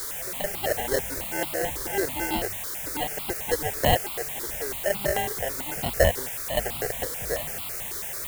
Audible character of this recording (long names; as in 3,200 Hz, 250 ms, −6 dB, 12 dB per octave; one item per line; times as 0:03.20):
aliases and images of a low sample rate 1,200 Hz, jitter 0%
sample-and-hold tremolo, depth 75%
a quantiser's noise floor 6 bits, dither triangular
notches that jump at a steady rate 9.1 Hz 720–1,700 Hz